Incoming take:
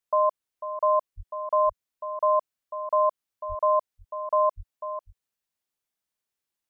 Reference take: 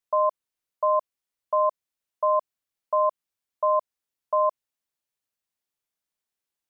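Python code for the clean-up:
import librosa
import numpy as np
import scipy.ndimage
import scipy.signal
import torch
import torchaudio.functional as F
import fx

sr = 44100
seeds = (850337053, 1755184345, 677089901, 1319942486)

y = fx.highpass(x, sr, hz=140.0, slope=24, at=(1.16, 1.28), fade=0.02)
y = fx.highpass(y, sr, hz=140.0, slope=24, at=(3.48, 3.6), fade=0.02)
y = fx.highpass(y, sr, hz=140.0, slope=24, at=(4.56, 4.68), fade=0.02)
y = fx.fix_echo_inverse(y, sr, delay_ms=496, level_db=-11.5)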